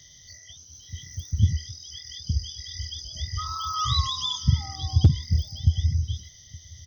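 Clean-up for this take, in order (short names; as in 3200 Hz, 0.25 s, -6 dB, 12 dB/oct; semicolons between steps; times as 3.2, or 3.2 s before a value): clip repair -8 dBFS; de-click; inverse comb 0.869 s -23 dB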